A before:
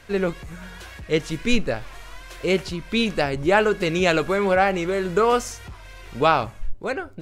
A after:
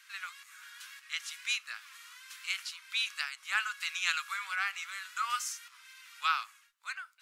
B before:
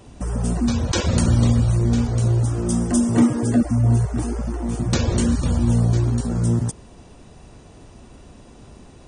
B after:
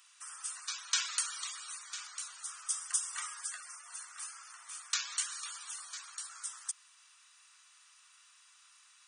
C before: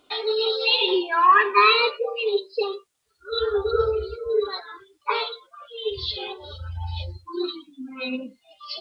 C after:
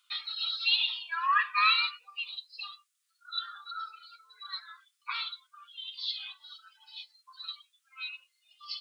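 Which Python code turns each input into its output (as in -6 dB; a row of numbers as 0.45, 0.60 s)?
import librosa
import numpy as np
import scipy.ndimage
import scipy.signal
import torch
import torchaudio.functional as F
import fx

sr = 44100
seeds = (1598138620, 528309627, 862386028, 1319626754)

y = scipy.signal.sosfilt(scipy.signal.ellip(4, 1.0, 70, 1200.0, 'highpass', fs=sr, output='sos'), x)
y = fx.high_shelf(y, sr, hz=4500.0, db=7.5)
y = y * librosa.db_to_amplitude(-8.0)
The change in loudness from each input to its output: -12.5, -17.5, -8.5 LU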